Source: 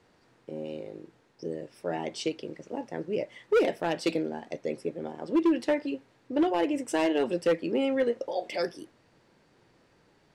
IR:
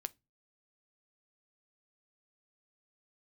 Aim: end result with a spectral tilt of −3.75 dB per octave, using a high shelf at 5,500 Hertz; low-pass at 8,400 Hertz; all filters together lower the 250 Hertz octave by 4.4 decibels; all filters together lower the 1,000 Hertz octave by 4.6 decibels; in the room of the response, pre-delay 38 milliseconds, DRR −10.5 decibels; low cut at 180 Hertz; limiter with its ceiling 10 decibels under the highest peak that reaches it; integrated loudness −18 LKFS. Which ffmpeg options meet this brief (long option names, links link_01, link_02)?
-filter_complex "[0:a]highpass=180,lowpass=8400,equalizer=frequency=250:width_type=o:gain=-5,equalizer=frequency=1000:width_type=o:gain=-6.5,highshelf=frequency=5500:gain=6.5,alimiter=level_in=1.5dB:limit=-24dB:level=0:latency=1,volume=-1.5dB,asplit=2[link_01][link_02];[1:a]atrim=start_sample=2205,adelay=38[link_03];[link_02][link_03]afir=irnorm=-1:irlink=0,volume=13dB[link_04];[link_01][link_04]amix=inputs=2:normalize=0,volume=8dB"